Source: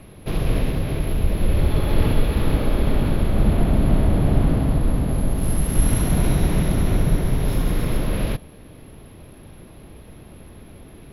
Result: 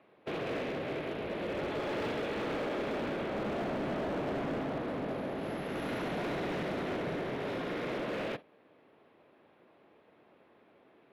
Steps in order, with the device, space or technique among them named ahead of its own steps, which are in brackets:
dynamic equaliser 1,000 Hz, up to −5 dB, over −44 dBFS, Q 1.6
walkie-talkie (band-pass filter 430–2,300 Hz; hard clipping −31.5 dBFS, distortion −11 dB; noise gate −42 dBFS, range −11 dB)

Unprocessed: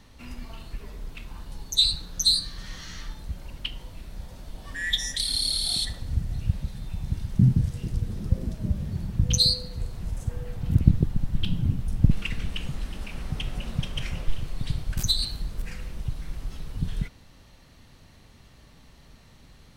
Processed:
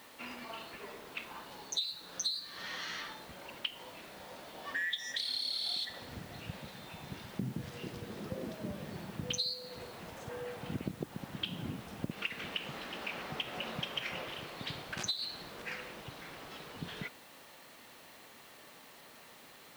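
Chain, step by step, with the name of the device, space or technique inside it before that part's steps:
baby monitor (band-pass filter 420–3,600 Hz; downward compressor 12 to 1, threshold −37 dBFS, peak gain reduction 18.5 dB; white noise bed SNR 19 dB)
level +4.5 dB

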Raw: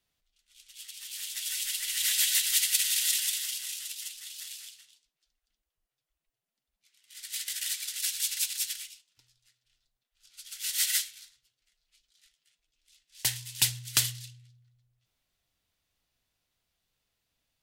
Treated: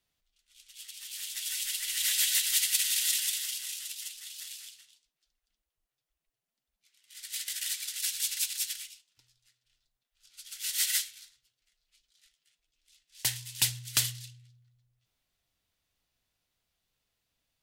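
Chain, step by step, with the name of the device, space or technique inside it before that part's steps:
parallel distortion (in parallel at −6 dB: hard clipping −19 dBFS, distortion −16 dB)
on the sum: level −4.5 dB

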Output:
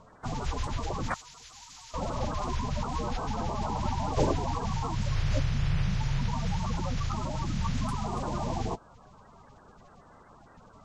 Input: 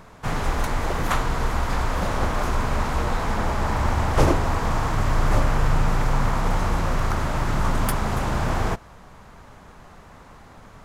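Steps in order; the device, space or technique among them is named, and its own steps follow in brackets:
clip after many re-uploads (low-pass filter 7,500 Hz 24 dB per octave; spectral magnitudes quantised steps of 30 dB)
0:01.14–0:01.94: first-order pre-emphasis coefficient 0.97
level −8 dB

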